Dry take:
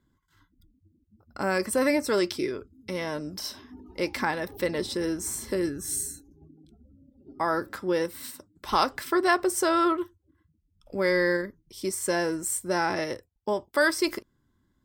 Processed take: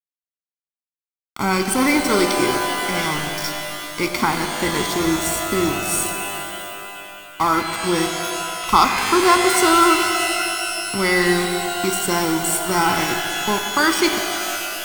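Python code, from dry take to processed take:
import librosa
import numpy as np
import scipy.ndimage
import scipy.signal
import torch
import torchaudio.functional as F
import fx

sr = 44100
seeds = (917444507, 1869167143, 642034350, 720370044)

y = np.where(np.abs(x) >= 10.0 ** (-32.0 / 20.0), x, 0.0)
y = y + 0.75 * np.pad(y, (int(0.9 * sr / 1000.0), 0))[:len(y)]
y = fx.rev_shimmer(y, sr, seeds[0], rt60_s=2.8, semitones=12, shimmer_db=-2, drr_db=5.5)
y = y * 10.0 ** (6.5 / 20.0)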